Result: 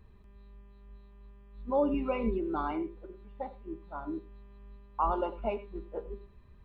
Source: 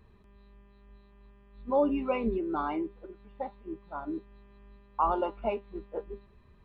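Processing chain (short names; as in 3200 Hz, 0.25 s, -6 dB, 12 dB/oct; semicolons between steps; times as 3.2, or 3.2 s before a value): low shelf 100 Hz +8 dB; reverb, pre-delay 3 ms, DRR 14 dB; 1.94–2.71 three-band squash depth 40%; gain -2.5 dB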